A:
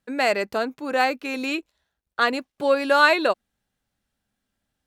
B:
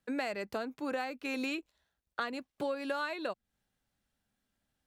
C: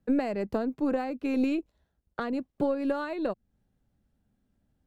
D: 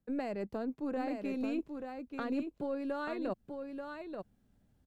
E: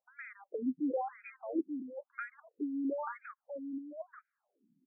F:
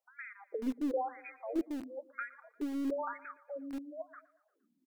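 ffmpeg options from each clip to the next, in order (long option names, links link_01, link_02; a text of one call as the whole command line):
ffmpeg -i in.wav -filter_complex "[0:a]acrossover=split=160[link_01][link_02];[link_02]acompressor=threshold=-29dB:ratio=10[link_03];[link_01][link_03]amix=inputs=2:normalize=0,volume=-3.5dB" out.wav
ffmpeg -i in.wav -af "tiltshelf=frequency=740:gain=10,aeval=exprs='0.1*(cos(1*acos(clip(val(0)/0.1,-1,1)))-cos(1*PI/2))+0.0141*(cos(2*acos(clip(val(0)/0.1,-1,1)))-cos(2*PI/2))':channel_layout=same,volume=3.5dB" out.wav
ffmpeg -i in.wav -af "areverse,acompressor=threshold=-36dB:ratio=6,areverse,aecho=1:1:884:0.501,volume=2dB" out.wav
ffmpeg -i in.wav -af "afftfilt=real='re*between(b*sr/1024,230*pow(1800/230,0.5+0.5*sin(2*PI*1*pts/sr))/1.41,230*pow(1800/230,0.5+0.5*sin(2*PI*1*pts/sr))*1.41)':imag='im*between(b*sr/1024,230*pow(1800/230,0.5+0.5*sin(2*PI*1*pts/sr))/1.41,230*pow(1800/230,0.5+0.5*sin(2*PI*1*pts/sr))*1.41)':win_size=1024:overlap=0.75,volume=4.5dB" out.wav
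ffmpeg -i in.wav -filter_complex "[0:a]aecho=1:1:116|232|348|464:0.106|0.054|0.0276|0.0141,acrossover=split=220|900[link_01][link_02][link_03];[link_01]acrusher=bits=5:dc=4:mix=0:aa=0.000001[link_04];[link_04][link_02][link_03]amix=inputs=3:normalize=0,volume=1dB" out.wav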